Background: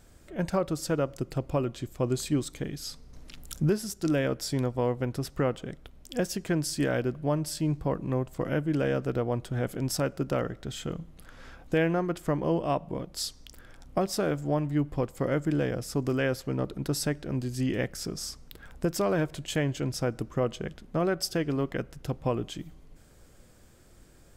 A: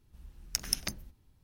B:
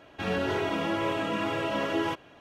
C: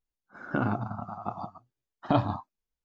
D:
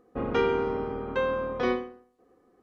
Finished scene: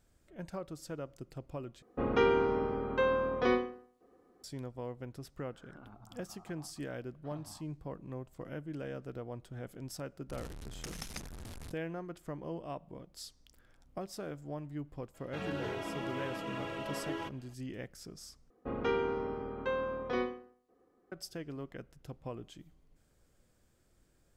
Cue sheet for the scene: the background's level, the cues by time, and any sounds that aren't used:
background -14 dB
1.82 s: replace with D -2 dB
5.21 s: add C -17 dB + compression 2.5:1, threshold -36 dBFS
10.29 s: add A -6.5 dB + one-bit delta coder 64 kbps, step -33 dBFS
15.14 s: add B -10.5 dB
18.50 s: replace with D -7 dB

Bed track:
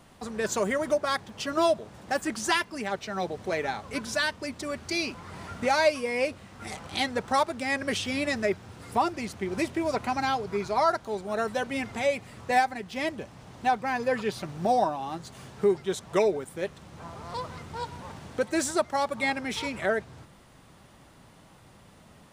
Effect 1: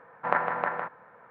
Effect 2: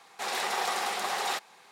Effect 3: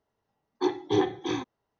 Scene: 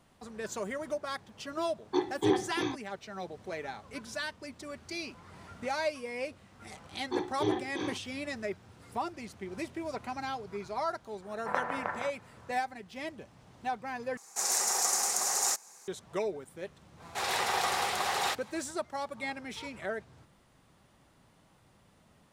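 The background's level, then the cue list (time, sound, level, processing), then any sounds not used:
bed track -9.5 dB
1.32 s: add 3 -3 dB
6.50 s: add 3 -7 dB + doubling 45 ms -5 dB
11.22 s: add 1 -6.5 dB
14.17 s: replace with 2 -5 dB + resonant high shelf 4.7 kHz +12 dB, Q 3
16.96 s: add 2, fades 0.10 s

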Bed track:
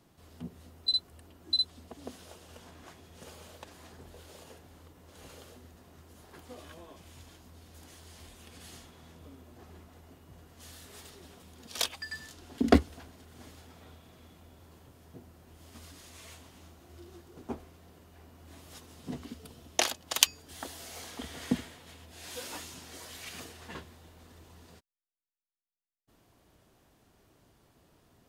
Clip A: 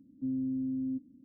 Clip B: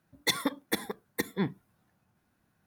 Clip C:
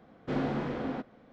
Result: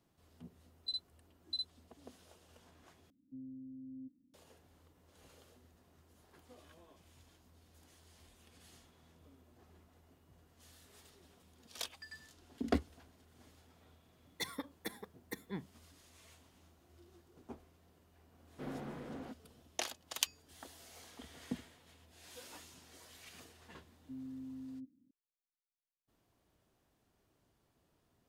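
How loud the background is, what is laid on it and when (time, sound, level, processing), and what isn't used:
bed track -11.5 dB
3.10 s: replace with A -16 dB + gain riding
14.13 s: add B -13 dB
18.31 s: add C -13 dB
23.87 s: add A -13.5 dB + high-pass 58 Hz

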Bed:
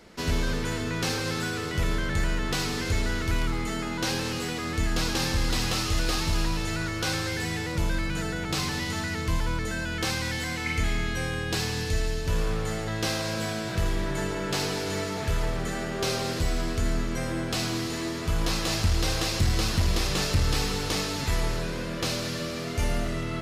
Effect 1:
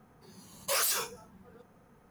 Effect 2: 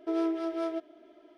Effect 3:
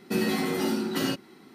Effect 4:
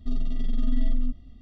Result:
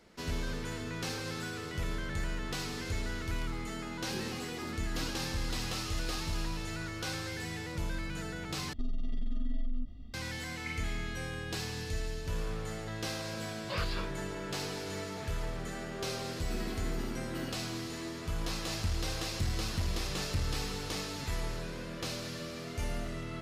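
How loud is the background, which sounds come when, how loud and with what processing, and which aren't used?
bed -9 dB
3.99 s: add 3 -11.5 dB + expander on every frequency bin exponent 3
8.73 s: replace with 4 -0.5 dB + compression 5:1, threshold -28 dBFS
13.01 s: add 1 -5 dB + elliptic low-pass 4.6 kHz
16.39 s: add 3 -15.5 dB
not used: 2

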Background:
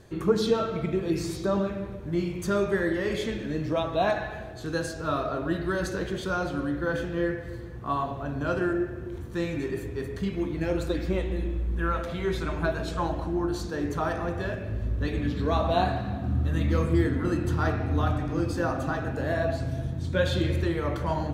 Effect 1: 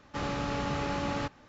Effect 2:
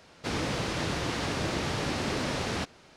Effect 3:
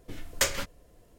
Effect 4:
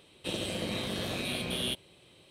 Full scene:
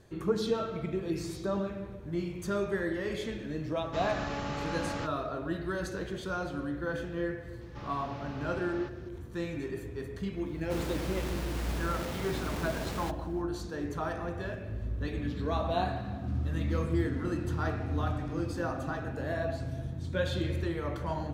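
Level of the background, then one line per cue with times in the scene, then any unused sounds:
background -6 dB
3.79 s: add 1 -3.5 dB
7.61 s: add 1 -11.5 dB + one-bit delta coder 32 kbps, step -44.5 dBFS
10.46 s: add 2 -12 dB + square wave that keeps the level
16.04 s: add 2 -13.5 dB + compression, threshold -46 dBFS
not used: 3, 4

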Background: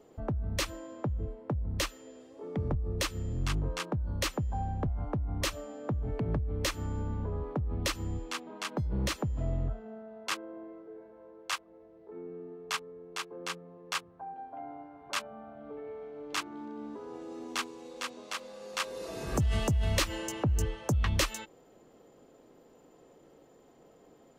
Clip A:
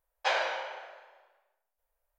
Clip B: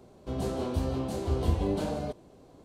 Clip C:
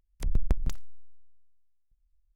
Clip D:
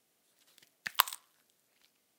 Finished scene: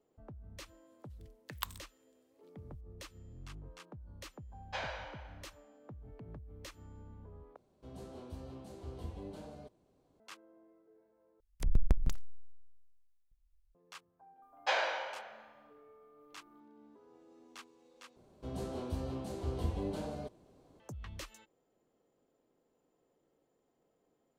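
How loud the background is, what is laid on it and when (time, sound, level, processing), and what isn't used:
background -18 dB
0.63 s: add D -13 dB
4.48 s: add A -11.5 dB
7.56 s: replace with B -17 dB
11.40 s: replace with C -2 dB
14.42 s: add A -3 dB + whistle 1.2 kHz -62 dBFS
18.16 s: replace with B -8.5 dB

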